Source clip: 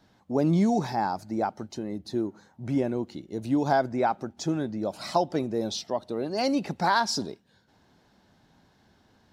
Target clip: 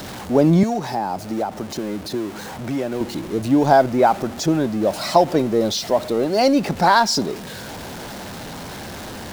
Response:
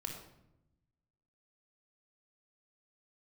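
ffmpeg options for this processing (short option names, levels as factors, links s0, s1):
-filter_complex "[0:a]aeval=exprs='val(0)+0.5*0.0168*sgn(val(0))':c=same,equalizer=f=560:w=1.4:g=3.5,asettb=1/sr,asplit=3[s0][s1][s2];[s0]atrim=end=0.634[s3];[s1]atrim=start=0.63:end=3.01,asetpts=PTS-STARTPTS,afade=t=in:d=0.004:c=qsin,afade=t=out:st=2.376:d=0.004:c=qsin,acrossover=split=160|760[s4][s5][s6];[s4]acompressor=threshold=0.00447:ratio=4[s7];[s5]acompressor=threshold=0.0282:ratio=4[s8];[s6]acompressor=threshold=0.0158:ratio=4[s9];[s7][s8][s9]amix=inputs=3:normalize=0[s10];[s2]atrim=start=3.006[s11];[s3][s10]acrossfade=d=0.004:c1=hsin:c2=qsin[s12];[s12][s11]acrossfade=d=0.004:c1=qsin:c2=hsin,volume=2.24"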